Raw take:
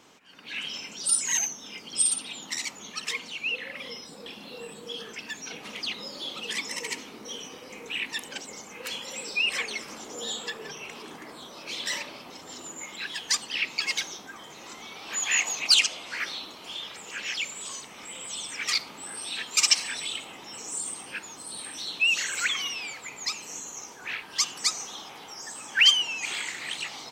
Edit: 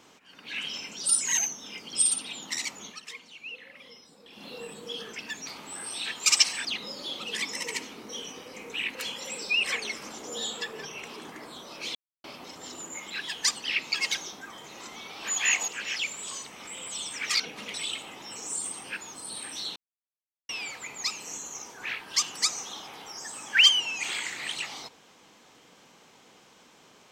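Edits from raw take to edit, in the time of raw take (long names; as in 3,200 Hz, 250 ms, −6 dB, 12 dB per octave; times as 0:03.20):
0:02.85–0:04.45: duck −11 dB, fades 0.15 s
0:05.47–0:05.81: swap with 0:18.78–0:19.96
0:08.11–0:08.81: remove
0:11.81–0:12.10: silence
0:15.54–0:17.06: remove
0:21.98–0:22.71: silence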